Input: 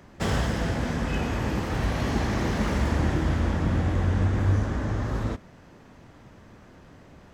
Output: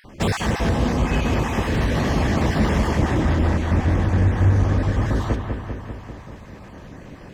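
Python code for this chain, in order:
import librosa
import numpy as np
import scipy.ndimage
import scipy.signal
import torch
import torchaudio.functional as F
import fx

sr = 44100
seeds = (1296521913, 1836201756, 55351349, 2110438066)

p1 = fx.spec_dropout(x, sr, seeds[0], share_pct=24)
p2 = fx.notch(p1, sr, hz=1400.0, q=11.0)
p3 = fx.rider(p2, sr, range_db=10, speed_s=0.5)
p4 = p2 + (p3 * librosa.db_to_amplitude(-2.0))
p5 = 10.0 ** (-13.0 / 20.0) * np.tanh(p4 / 10.0 ** (-13.0 / 20.0))
p6 = fx.echo_bbd(p5, sr, ms=197, stages=4096, feedback_pct=68, wet_db=-6)
y = p6 * librosa.db_to_amplitude(1.5)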